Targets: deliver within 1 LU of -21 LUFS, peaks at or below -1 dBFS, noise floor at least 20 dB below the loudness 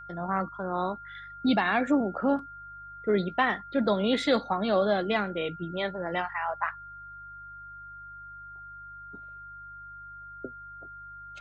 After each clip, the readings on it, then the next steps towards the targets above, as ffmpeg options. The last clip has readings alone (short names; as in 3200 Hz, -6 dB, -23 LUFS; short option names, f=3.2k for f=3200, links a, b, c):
hum 50 Hz; harmonics up to 150 Hz; hum level -54 dBFS; steady tone 1400 Hz; tone level -42 dBFS; loudness -28.0 LUFS; peak -12.0 dBFS; loudness target -21.0 LUFS
-> -af "bandreject=f=50:t=h:w=4,bandreject=f=100:t=h:w=4,bandreject=f=150:t=h:w=4"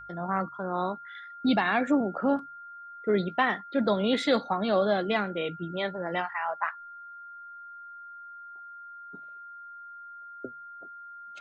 hum none; steady tone 1400 Hz; tone level -42 dBFS
-> -af "bandreject=f=1.4k:w=30"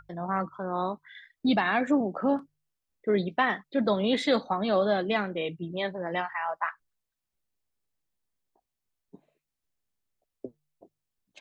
steady tone none; loudness -28.5 LUFS; peak -12.0 dBFS; loudness target -21.0 LUFS
-> -af "volume=7.5dB"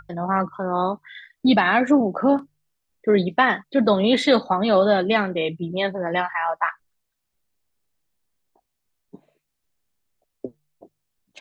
loudness -21.0 LUFS; peak -4.5 dBFS; noise floor -78 dBFS